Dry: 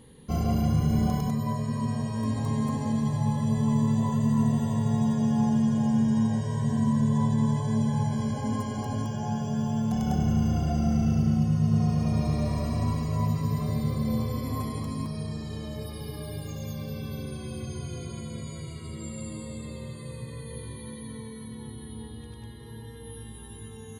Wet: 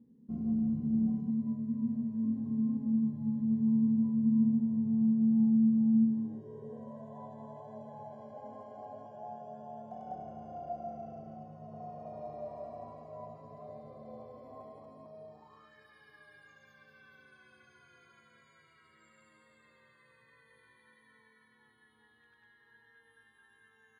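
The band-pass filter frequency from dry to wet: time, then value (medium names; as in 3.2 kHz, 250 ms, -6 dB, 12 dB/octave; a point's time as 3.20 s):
band-pass filter, Q 6.4
6.02 s 230 Hz
7.04 s 660 Hz
15.30 s 660 Hz
15.73 s 1.6 kHz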